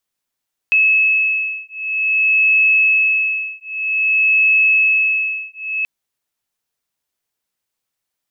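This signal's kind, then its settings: beating tones 2590 Hz, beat 0.52 Hz, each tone -15.5 dBFS 5.13 s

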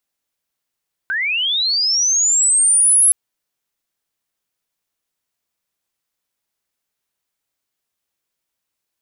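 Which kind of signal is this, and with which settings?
chirp linear 1500 Hz -> 11000 Hz -17.5 dBFS -> -8.5 dBFS 2.02 s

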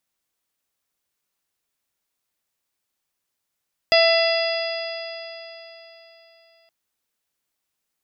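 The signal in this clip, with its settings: stretched partials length 2.77 s, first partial 661 Hz, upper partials -15/-7.5/-7.5/-10/-19/-4 dB, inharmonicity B 0.0024, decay 3.69 s, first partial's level -14 dB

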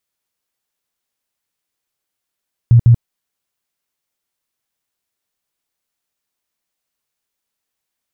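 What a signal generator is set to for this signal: tone bursts 118 Hz, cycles 10, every 0.15 s, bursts 2, -4 dBFS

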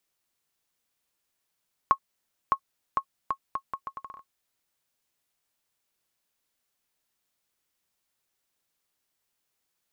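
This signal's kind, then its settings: bouncing ball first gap 0.61 s, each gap 0.74, 1090 Hz, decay 74 ms -9 dBFS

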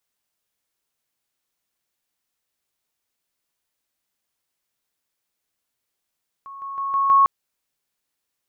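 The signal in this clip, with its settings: level ladder 1100 Hz -35 dBFS, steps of 6 dB, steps 5, 0.16 s 0.00 s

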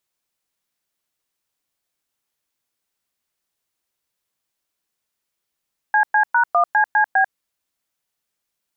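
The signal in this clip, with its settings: DTMF "CC#1CCB", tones 93 ms, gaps 0.109 s, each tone -15 dBFS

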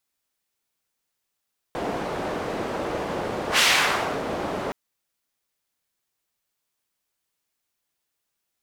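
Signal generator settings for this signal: whoosh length 2.97 s, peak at 1.84, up 0.10 s, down 0.66 s, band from 530 Hz, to 3000 Hz, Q 0.91, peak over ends 11 dB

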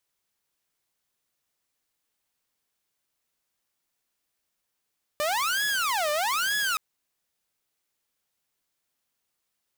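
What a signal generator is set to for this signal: siren wail 593–1690 Hz 1.1/s saw -21.5 dBFS 1.57 s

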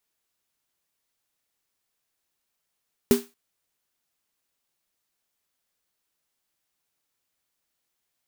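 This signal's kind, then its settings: snare drum length 0.23 s, tones 240 Hz, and 400 Hz, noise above 590 Hz, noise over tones -11.5 dB, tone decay 0.21 s, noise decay 0.29 s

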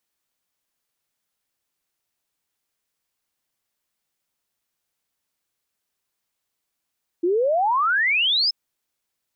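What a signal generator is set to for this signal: log sweep 330 Hz -> 5300 Hz 1.28 s -17 dBFS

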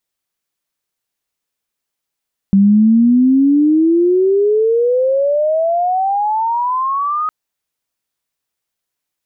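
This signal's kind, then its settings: gliding synth tone sine, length 4.76 s, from 193 Hz, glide +32.5 st, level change -9 dB, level -6 dB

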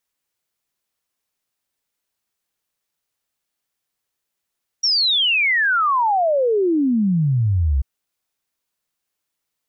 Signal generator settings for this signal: log sweep 5700 Hz -> 63 Hz 2.99 s -14.5 dBFS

